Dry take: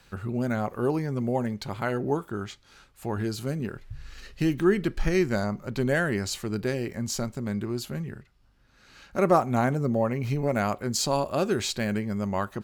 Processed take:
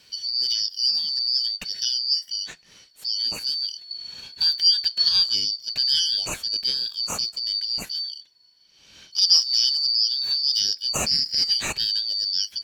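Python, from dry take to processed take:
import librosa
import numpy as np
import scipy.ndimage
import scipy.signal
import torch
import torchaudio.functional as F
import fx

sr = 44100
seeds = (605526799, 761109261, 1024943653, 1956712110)

y = fx.band_shuffle(x, sr, order='4321')
y = y * librosa.db_to_amplitude(3.0)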